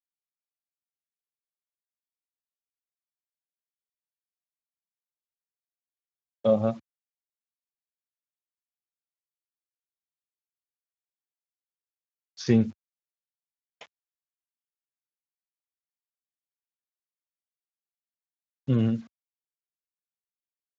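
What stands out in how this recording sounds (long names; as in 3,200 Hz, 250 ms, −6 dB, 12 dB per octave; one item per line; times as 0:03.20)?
sample-and-hold tremolo 2.2 Hz
a quantiser's noise floor 10 bits, dither none
Speex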